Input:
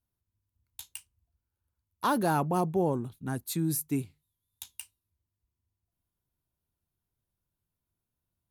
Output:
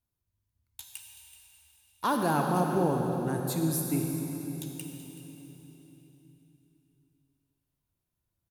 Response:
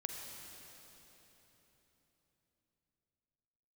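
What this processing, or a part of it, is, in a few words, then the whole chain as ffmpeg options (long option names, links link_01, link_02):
cave: -filter_complex "[0:a]aecho=1:1:379:0.15[link_01];[1:a]atrim=start_sample=2205[link_02];[link_01][link_02]afir=irnorm=-1:irlink=0,volume=1.5dB"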